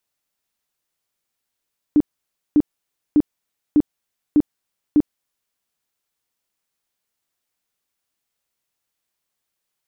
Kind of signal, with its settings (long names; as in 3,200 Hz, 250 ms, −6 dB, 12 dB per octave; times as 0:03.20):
tone bursts 297 Hz, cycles 13, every 0.60 s, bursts 6, −9.5 dBFS